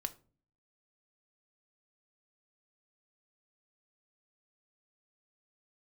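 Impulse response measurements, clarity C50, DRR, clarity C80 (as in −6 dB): 18.5 dB, 8.0 dB, 23.5 dB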